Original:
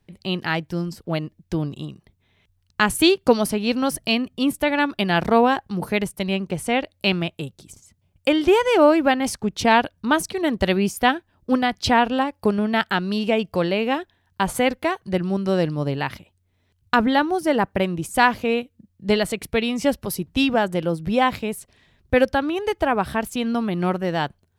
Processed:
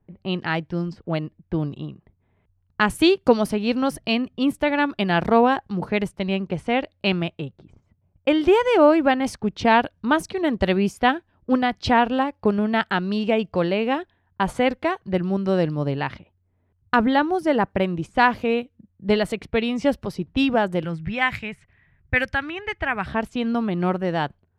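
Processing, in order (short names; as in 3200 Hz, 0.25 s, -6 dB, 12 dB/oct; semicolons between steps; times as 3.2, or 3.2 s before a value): 20.84–23.06 ten-band EQ 125 Hz +5 dB, 250 Hz -8 dB, 500 Hz -10 dB, 1000 Hz -5 dB, 2000 Hz +10 dB, 4000 Hz -4 dB, 8000 Hz +5 dB; low-pass opened by the level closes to 1200 Hz, open at -18 dBFS; high shelf 5100 Hz -11.5 dB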